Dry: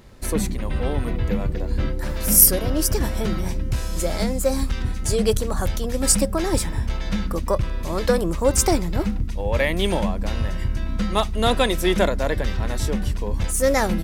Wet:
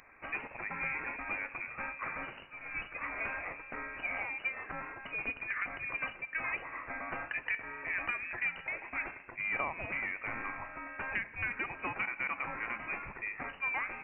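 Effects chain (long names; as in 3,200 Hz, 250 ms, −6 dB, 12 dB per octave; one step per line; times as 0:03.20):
Bessel high-pass filter 780 Hz, order 4
downward compressor 12 to 1, threshold −30 dBFS, peak gain reduction 22.5 dB
asymmetric clip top −30 dBFS
four-comb reverb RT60 1.2 s, combs from 28 ms, DRR 14.5 dB
voice inversion scrambler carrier 2,900 Hz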